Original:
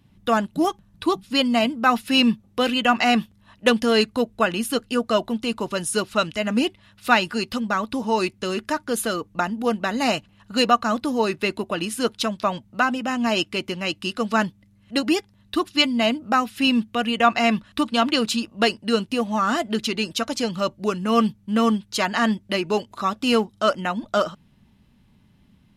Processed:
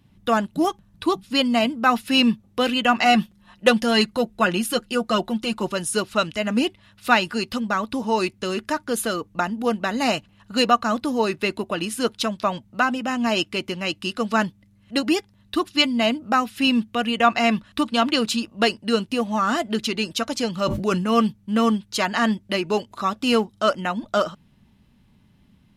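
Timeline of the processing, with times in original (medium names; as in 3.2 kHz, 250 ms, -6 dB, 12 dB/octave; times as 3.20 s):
3.05–5.72 s: comb 5.6 ms
20.57–21.14 s: decay stretcher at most 48 dB/s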